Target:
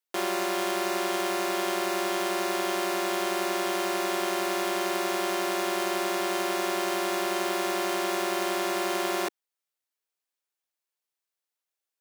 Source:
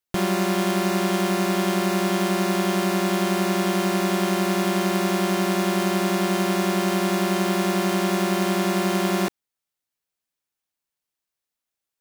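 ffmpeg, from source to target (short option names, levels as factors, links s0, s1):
-af "highpass=f=340:w=0.5412,highpass=f=340:w=1.3066,volume=0.708"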